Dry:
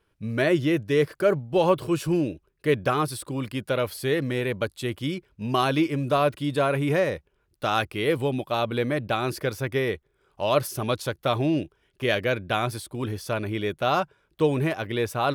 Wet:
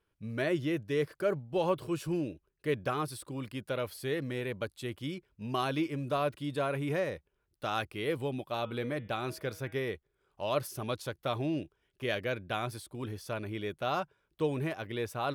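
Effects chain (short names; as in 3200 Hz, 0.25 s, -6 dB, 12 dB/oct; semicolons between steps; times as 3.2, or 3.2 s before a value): 8.49–9.85 de-hum 160 Hz, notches 23; gain -9 dB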